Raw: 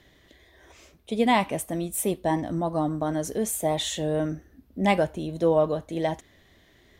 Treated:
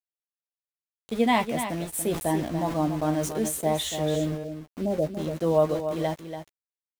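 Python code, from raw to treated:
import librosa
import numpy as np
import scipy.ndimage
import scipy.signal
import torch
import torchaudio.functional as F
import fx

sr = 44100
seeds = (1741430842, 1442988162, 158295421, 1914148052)

y = fx.steep_lowpass(x, sr, hz=640.0, slope=36, at=(4.14, 5.13), fade=0.02)
y = np.where(np.abs(y) >= 10.0 ** (-35.5 / 20.0), y, 0.0)
y = fx.doubler(y, sr, ms=13.0, db=-8.5)
y = y + 10.0 ** (-9.0 / 20.0) * np.pad(y, (int(286 * sr / 1000.0), 0))[:len(y)]
y = fx.sustainer(y, sr, db_per_s=85.0, at=(2.04, 3.49))
y = y * librosa.db_to_amplitude(-2.0)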